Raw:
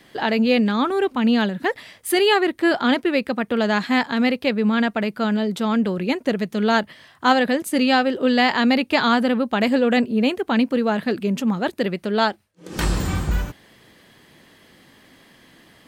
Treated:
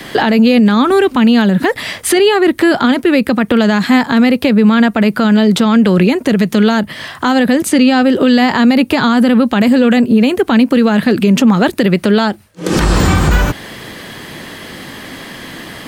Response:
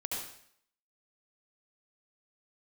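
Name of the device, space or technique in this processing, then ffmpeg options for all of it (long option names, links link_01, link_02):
mastering chain: -filter_complex "[0:a]equalizer=frequency=1300:width_type=o:width=0.77:gain=1.5,acrossover=split=270|1500|7600[link_01][link_02][link_03][link_04];[link_01]acompressor=threshold=-25dB:ratio=4[link_05];[link_02]acompressor=threshold=-30dB:ratio=4[link_06];[link_03]acompressor=threshold=-36dB:ratio=4[link_07];[link_04]acompressor=threshold=-50dB:ratio=4[link_08];[link_05][link_06][link_07][link_08]amix=inputs=4:normalize=0,acompressor=threshold=-30dB:ratio=2,alimiter=level_in=22.5dB:limit=-1dB:release=50:level=0:latency=1,volume=-1dB"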